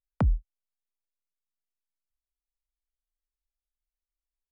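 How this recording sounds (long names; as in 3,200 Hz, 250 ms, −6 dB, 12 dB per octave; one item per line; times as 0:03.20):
background noise floor −94 dBFS
spectral slope −8.5 dB per octave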